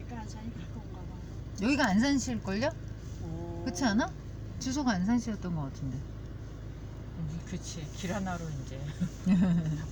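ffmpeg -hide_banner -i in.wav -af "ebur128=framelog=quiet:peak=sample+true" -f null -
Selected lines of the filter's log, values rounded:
Integrated loudness:
  I:         -32.8 LUFS
  Threshold: -43.2 LUFS
Loudness range:
  LRA:         7.1 LU
  Threshold: -53.5 LUFS
  LRA low:   -38.4 LUFS
  LRA high:  -31.2 LUFS
Sample peak:
  Peak:      -14.8 dBFS
True peak:
  Peak:      -14.8 dBFS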